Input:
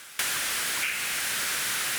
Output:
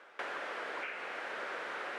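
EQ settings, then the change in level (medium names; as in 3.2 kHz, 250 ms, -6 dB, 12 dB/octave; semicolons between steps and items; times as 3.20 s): ladder band-pass 600 Hz, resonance 30%; +11.5 dB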